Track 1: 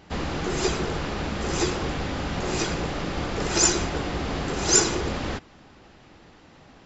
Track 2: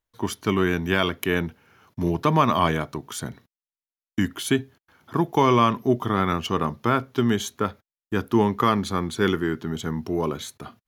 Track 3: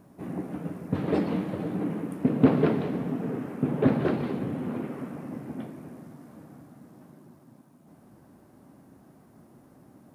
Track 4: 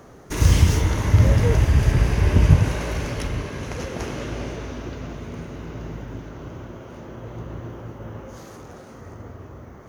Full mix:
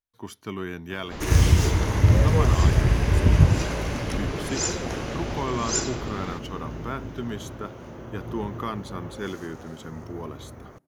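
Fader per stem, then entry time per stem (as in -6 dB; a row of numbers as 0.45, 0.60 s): -7.5, -11.0, -15.0, -2.0 dB; 1.00, 0.00, 1.70, 0.90 s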